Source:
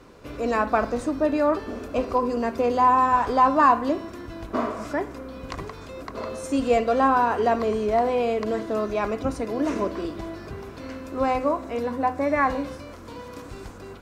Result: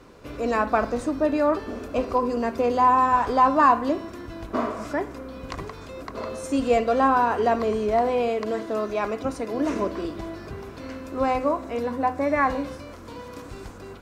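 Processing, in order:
0:08.28–0:09.54: low-shelf EQ 150 Hz −8 dB

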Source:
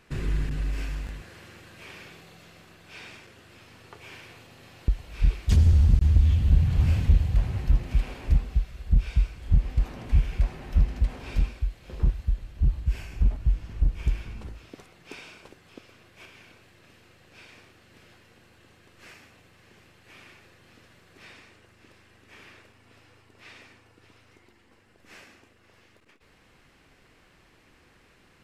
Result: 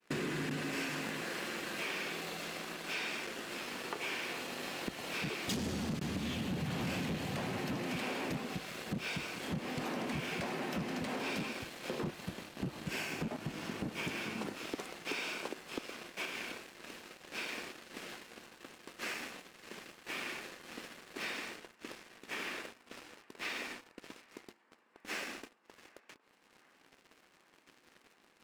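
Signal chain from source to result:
high-pass filter 200 Hz 24 dB per octave
downward expander −55 dBFS
leveller curve on the samples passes 3
downward compressor 4 to 1, threshold −37 dBFS, peak gain reduction 10.5 dB
on a send: feedback echo with a band-pass in the loop 761 ms, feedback 83%, band-pass 950 Hz, level −23 dB
on the sum: level +1 dB

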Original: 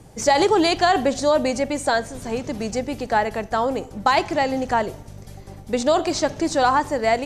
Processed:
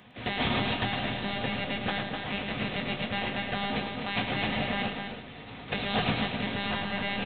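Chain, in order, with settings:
compressing power law on the bin magnitudes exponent 0.31
one-pitch LPC vocoder at 8 kHz 200 Hz
brickwall limiter −12.5 dBFS, peak gain reduction 11.5 dB
loudspeakers that aren't time-aligned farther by 37 metres −7 dB, 87 metres −6 dB
convolution reverb RT60 0.50 s, pre-delay 3 ms, DRR 4.5 dB
speech leveller within 4 dB 2 s
parametric band 1,800 Hz −9.5 dB 2.8 octaves
level +2.5 dB

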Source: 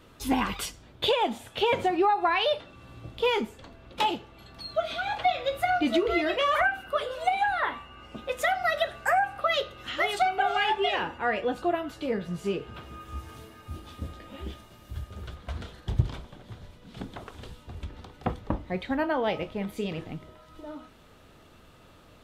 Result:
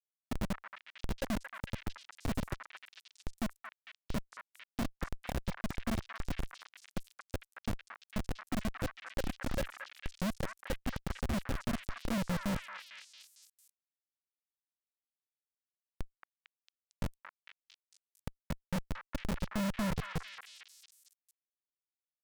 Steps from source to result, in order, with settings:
drawn EQ curve 120 Hz 0 dB, 240 Hz −7 dB, 380 Hz −20 dB, 550 Hz −17 dB, 900 Hz −5 dB, 1,300 Hz −21 dB, 2,200 Hz −28 dB, 5,700 Hz −5 dB, 9,000 Hz −17 dB, 15,000 Hz −12 dB
reversed playback
downward compressor 12 to 1, threshold −47 dBFS, peak gain reduction 30.5 dB
reversed playback
sample-and-hold swept by an LFO 37×, swing 60% 1.3 Hz
hollow resonant body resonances 210/530/1,300 Hz, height 17 dB, ringing for 55 ms
comparator with hysteresis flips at −35.5 dBFS
on a send: echo through a band-pass that steps 226 ms, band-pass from 1,500 Hz, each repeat 0.7 octaves, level 0 dB
on the sum: level +11.5 dB

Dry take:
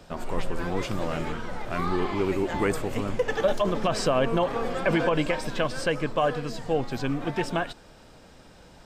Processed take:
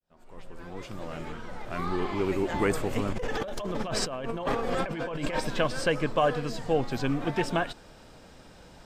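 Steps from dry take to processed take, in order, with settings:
fade in at the beginning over 2.87 s
0:03.12–0:05.40: compressor whose output falls as the input rises −31 dBFS, ratio −1

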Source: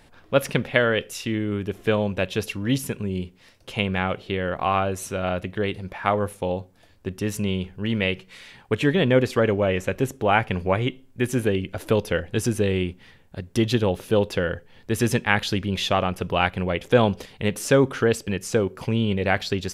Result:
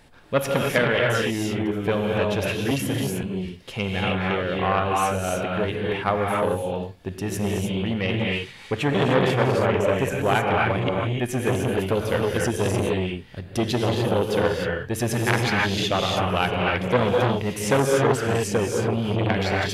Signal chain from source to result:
0:02.71–0:03.23: high-pass filter 120 Hz 24 dB per octave
reverb whose tail is shaped and stops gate 330 ms rising, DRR −1 dB
saturating transformer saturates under 1,200 Hz

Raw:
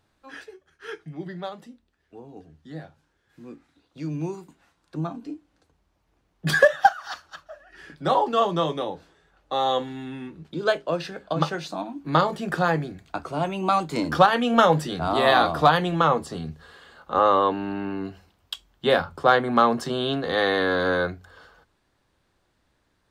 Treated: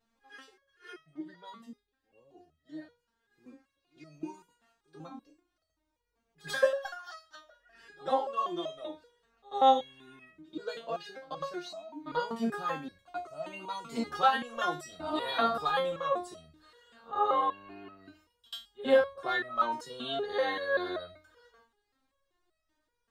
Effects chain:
echo ahead of the sound 89 ms −20 dB
step-sequenced resonator 5.2 Hz 230–640 Hz
level +5.5 dB

